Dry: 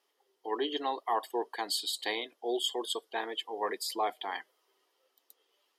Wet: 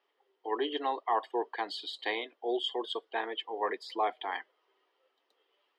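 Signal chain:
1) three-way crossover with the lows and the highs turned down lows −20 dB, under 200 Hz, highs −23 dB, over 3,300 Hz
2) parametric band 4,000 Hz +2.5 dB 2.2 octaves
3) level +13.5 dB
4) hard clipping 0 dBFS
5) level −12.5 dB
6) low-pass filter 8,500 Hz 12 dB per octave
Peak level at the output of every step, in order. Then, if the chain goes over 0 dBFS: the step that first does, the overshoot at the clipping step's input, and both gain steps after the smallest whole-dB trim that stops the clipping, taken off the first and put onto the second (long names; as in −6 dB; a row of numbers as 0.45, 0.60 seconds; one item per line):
−18.5, −18.0, −4.5, −4.5, −17.0, −17.0 dBFS
no step passes full scale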